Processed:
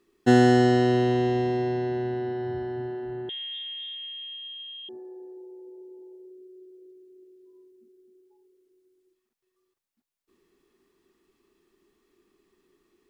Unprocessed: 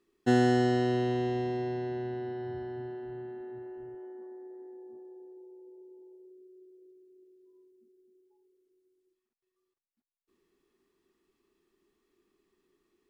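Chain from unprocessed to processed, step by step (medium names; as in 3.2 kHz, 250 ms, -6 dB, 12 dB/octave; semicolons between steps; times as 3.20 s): 3.29–4.89 s: frequency inversion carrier 3.6 kHz; trim +6.5 dB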